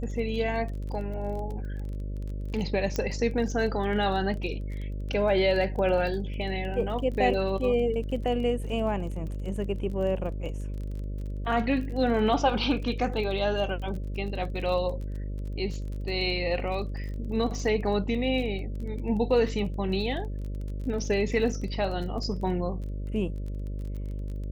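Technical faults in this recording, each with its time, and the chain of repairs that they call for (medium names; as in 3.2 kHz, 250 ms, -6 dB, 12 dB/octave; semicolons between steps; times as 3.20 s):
buzz 50 Hz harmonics 12 -33 dBFS
crackle 25 per s -36 dBFS
2.96 s: pop -15 dBFS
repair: de-click; de-hum 50 Hz, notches 12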